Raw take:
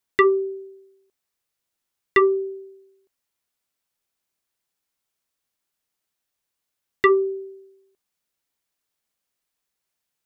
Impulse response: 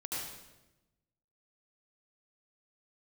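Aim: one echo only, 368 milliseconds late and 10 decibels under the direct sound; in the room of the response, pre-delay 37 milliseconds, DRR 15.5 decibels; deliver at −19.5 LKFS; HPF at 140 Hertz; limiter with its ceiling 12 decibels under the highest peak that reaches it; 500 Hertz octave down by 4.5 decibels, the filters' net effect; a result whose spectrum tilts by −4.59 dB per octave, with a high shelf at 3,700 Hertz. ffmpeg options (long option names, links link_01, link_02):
-filter_complex "[0:a]highpass=140,equalizer=frequency=500:width_type=o:gain=-7,highshelf=frequency=3700:gain=6,alimiter=limit=-17.5dB:level=0:latency=1,aecho=1:1:368:0.316,asplit=2[link_01][link_02];[1:a]atrim=start_sample=2205,adelay=37[link_03];[link_02][link_03]afir=irnorm=-1:irlink=0,volume=-17.5dB[link_04];[link_01][link_04]amix=inputs=2:normalize=0,volume=10dB"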